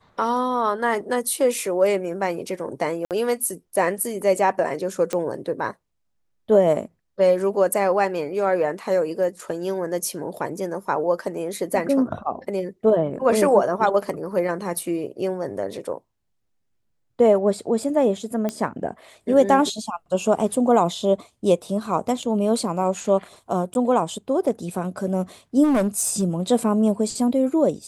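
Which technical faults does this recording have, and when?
3.05–3.11 gap 58 ms
5.13 pop -11 dBFS
18.49 pop -13 dBFS
23.74–23.75 gap
25.63–26.23 clipped -16 dBFS

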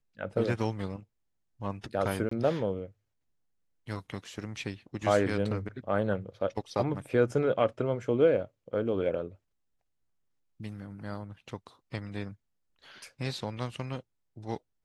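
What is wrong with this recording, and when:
2.29–2.31 gap 24 ms

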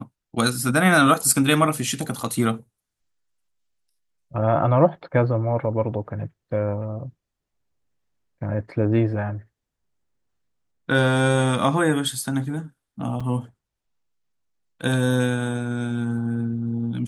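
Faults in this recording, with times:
13.2 gap 4.7 ms

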